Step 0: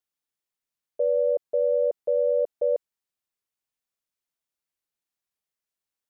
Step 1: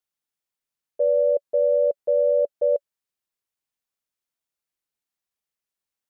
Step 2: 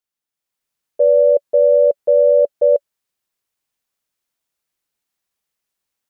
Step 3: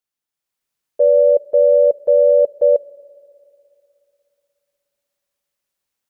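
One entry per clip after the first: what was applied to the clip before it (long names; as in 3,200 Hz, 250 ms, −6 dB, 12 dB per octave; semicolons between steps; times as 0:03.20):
dynamic equaliser 570 Hz, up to +5 dB, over −36 dBFS, Q 7.7
automatic gain control gain up to 8 dB
convolution reverb RT60 2.9 s, pre-delay 3 ms, DRR 20 dB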